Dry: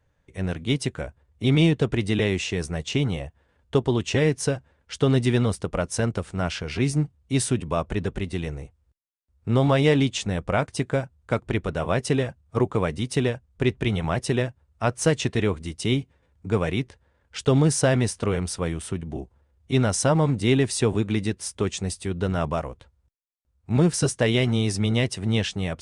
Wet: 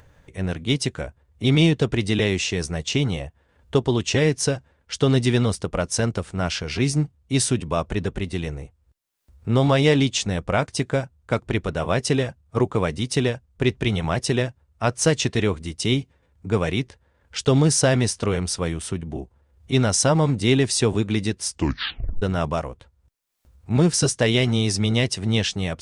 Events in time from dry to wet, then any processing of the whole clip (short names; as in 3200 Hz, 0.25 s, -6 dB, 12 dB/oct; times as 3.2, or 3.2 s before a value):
21.48 tape stop 0.74 s
whole clip: dynamic EQ 5300 Hz, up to +6 dB, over -46 dBFS, Q 0.99; upward compressor, threshold -42 dBFS; gain +1.5 dB